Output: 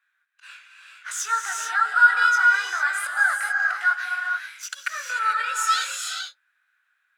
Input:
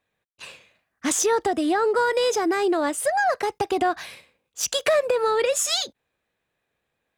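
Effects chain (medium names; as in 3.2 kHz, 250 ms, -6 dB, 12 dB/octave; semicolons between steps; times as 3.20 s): in parallel at -0.5 dB: compression, threshold -34 dBFS, peak gain reduction 16 dB; on the sum: chorus 0.98 Hz, delay 17.5 ms, depth 3.1 ms; slow attack 144 ms; ladder high-pass 1.4 kHz, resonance 85%; gated-style reverb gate 470 ms rising, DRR 1 dB; trim +8.5 dB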